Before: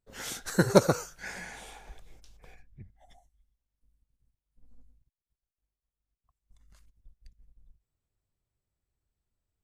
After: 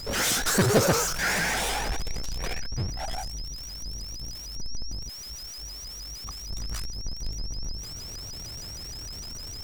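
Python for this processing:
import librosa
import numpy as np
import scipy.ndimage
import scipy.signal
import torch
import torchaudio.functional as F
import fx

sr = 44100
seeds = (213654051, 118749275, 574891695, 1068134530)

y = fx.power_curve(x, sr, exponent=0.35)
y = y + 10.0 ** (-30.0 / 20.0) * np.sin(2.0 * np.pi * 5400.0 * np.arange(len(y)) / sr)
y = fx.vibrato_shape(y, sr, shape='saw_up', rate_hz=6.5, depth_cents=160.0)
y = F.gain(torch.from_numpy(y), -8.0).numpy()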